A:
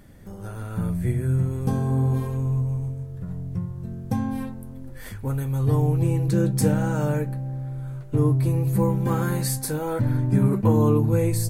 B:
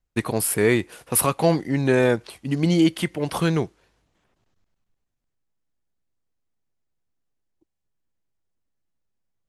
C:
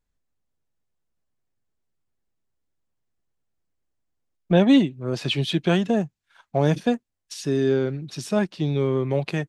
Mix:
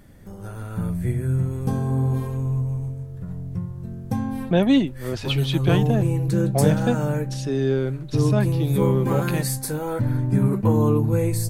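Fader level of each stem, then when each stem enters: 0.0 dB, off, -1.5 dB; 0.00 s, off, 0.00 s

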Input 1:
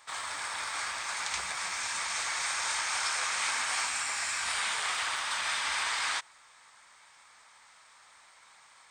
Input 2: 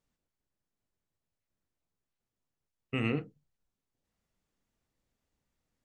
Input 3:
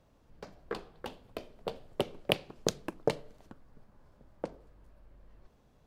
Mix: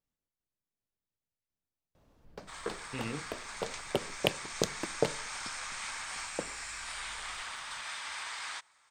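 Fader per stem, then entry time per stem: -9.0, -8.0, 0.0 dB; 2.40, 0.00, 1.95 s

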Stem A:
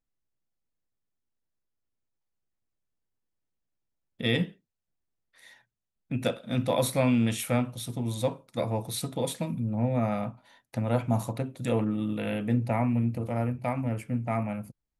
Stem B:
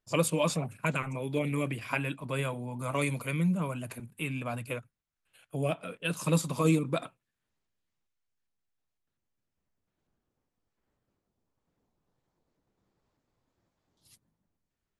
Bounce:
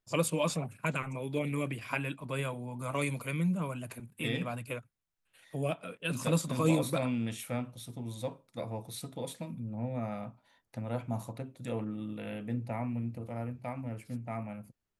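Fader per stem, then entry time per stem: -9.0, -2.5 dB; 0.00, 0.00 s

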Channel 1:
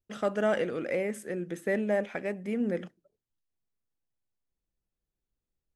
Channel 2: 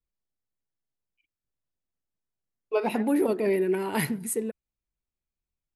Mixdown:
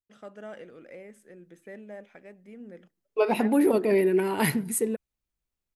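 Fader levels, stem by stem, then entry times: -15.0, +2.5 dB; 0.00, 0.45 s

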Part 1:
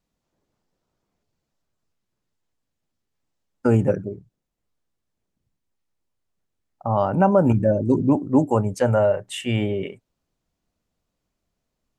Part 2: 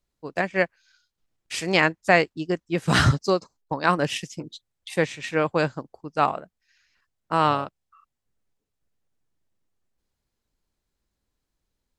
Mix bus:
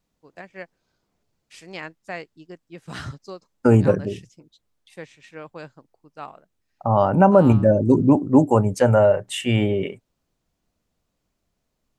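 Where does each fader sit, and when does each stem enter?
+3.0, -15.5 dB; 0.00, 0.00 s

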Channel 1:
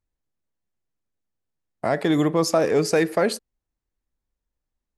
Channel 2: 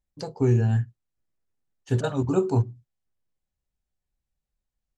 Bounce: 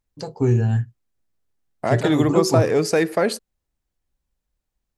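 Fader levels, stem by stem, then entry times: +1.0, +2.5 dB; 0.00, 0.00 s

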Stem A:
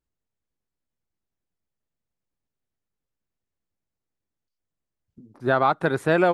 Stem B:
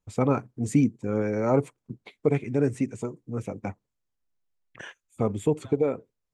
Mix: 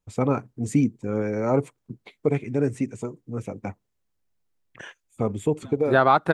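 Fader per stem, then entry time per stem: +2.5, +0.5 dB; 0.45, 0.00 s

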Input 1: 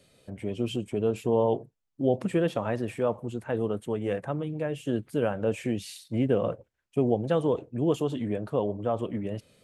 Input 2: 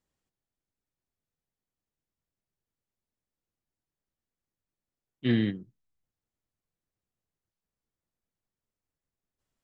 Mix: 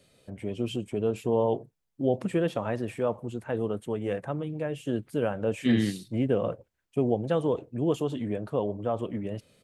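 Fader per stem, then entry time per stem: -1.0, +0.5 dB; 0.00, 0.40 s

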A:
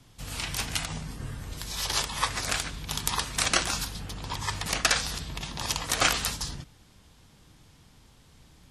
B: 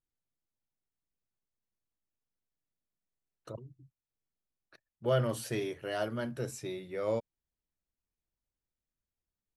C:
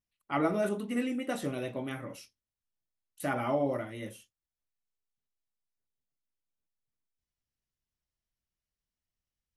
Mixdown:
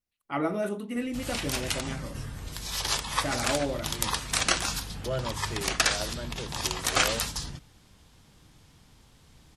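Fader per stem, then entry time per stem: -0.5, -3.5, 0.0 dB; 0.95, 0.00, 0.00 s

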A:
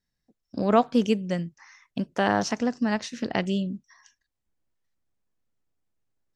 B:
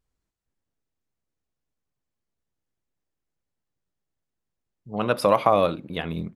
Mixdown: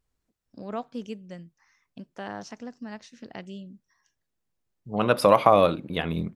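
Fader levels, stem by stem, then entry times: -13.5, +1.5 dB; 0.00, 0.00 s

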